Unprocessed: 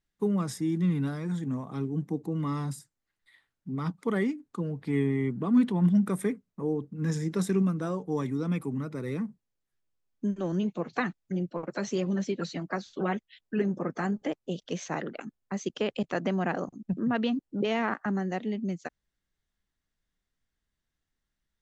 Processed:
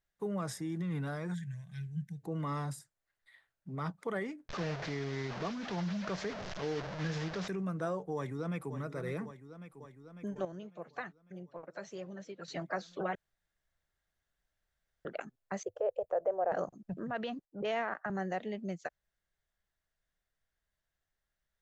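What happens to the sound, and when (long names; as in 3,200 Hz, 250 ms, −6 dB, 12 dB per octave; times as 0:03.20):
0:01.34–0:02.23: gain on a spectral selection 210–1,500 Hz −28 dB
0:04.49–0:07.48: linear delta modulator 32 kbit/s, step −31.5 dBFS
0:08.15–0:08.75: delay throw 550 ms, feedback 75%, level −12 dB
0:10.45–0:12.48: clip gain −10.5 dB
0:13.15–0:15.05: fill with room tone
0:15.63–0:16.52: drawn EQ curve 100 Hz 0 dB, 200 Hz −29 dB, 500 Hz +7 dB, 2,000 Hz −19 dB, 3,800 Hz −28 dB, 6,400 Hz −22 dB, 11,000 Hz +4 dB
0:17.45–0:18.10: multiband upward and downward expander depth 70%
whole clip: brickwall limiter −23.5 dBFS; graphic EQ with 15 bands 250 Hz −9 dB, 630 Hz +8 dB, 1,600 Hz +5 dB; level −4 dB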